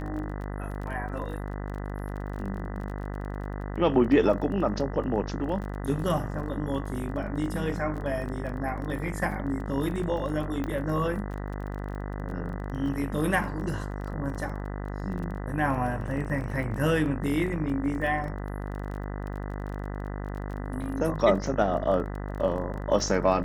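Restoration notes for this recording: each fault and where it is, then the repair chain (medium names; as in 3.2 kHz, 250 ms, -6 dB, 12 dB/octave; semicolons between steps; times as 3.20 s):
buzz 50 Hz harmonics 40 -34 dBFS
crackle 22 per s -36 dBFS
10.64 s: pop -20 dBFS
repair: de-click; de-hum 50 Hz, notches 40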